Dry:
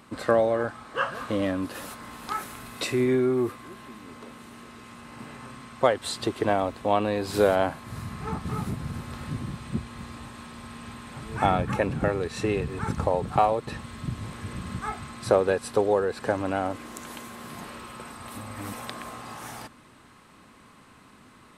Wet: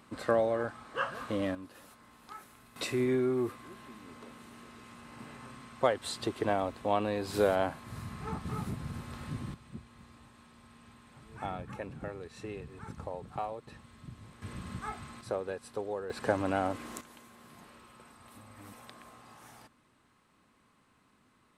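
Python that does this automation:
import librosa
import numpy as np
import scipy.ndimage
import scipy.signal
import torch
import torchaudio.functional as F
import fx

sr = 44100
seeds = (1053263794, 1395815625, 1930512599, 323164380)

y = fx.gain(x, sr, db=fx.steps((0.0, -6.0), (1.55, -16.5), (2.76, -6.0), (9.54, -15.5), (14.42, -7.0), (15.21, -14.0), (16.1, -3.0), (17.01, -14.5)))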